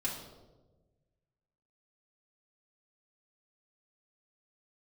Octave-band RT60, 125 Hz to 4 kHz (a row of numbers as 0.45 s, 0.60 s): 2.0 s, 1.5 s, 1.4 s, 1.0 s, 0.70 s, 0.75 s